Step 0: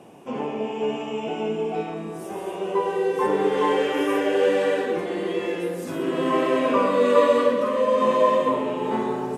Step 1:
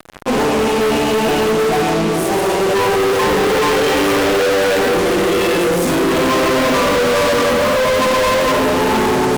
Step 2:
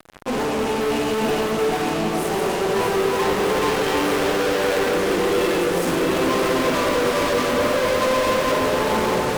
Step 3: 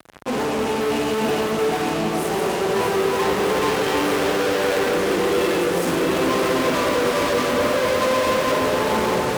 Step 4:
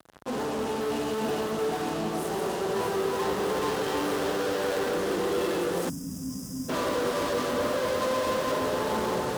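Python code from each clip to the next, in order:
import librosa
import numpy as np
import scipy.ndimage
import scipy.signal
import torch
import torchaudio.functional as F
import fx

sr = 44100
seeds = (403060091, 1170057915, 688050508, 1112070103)

y1 = fx.fuzz(x, sr, gain_db=40.0, gate_db=-41.0)
y2 = fx.echo_alternate(y1, sr, ms=312, hz=1500.0, feedback_pct=87, wet_db=-6.0)
y2 = y2 * 10.0 ** (-7.5 / 20.0)
y3 = scipy.signal.sosfilt(scipy.signal.butter(2, 55.0, 'highpass', fs=sr, output='sos'), y2)
y4 = fx.spec_box(y3, sr, start_s=5.89, length_s=0.8, low_hz=300.0, high_hz=4800.0, gain_db=-26)
y4 = fx.peak_eq(y4, sr, hz=2300.0, db=-6.0, octaves=0.57)
y4 = y4 * 10.0 ** (-7.5 / 20.0)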